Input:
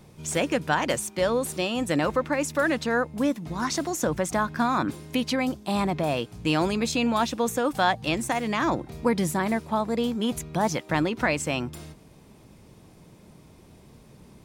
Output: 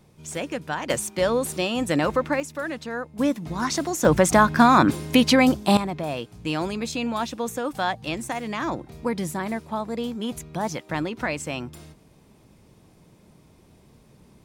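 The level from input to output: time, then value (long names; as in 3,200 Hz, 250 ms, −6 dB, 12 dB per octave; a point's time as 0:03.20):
−5 dB
from 0:00.90 +2 dB
from 0:02.40 −6.5 dB
from 0:03.19 +2 dB
from 0:04.05 +9 dB
from 0:05.77 −3 dB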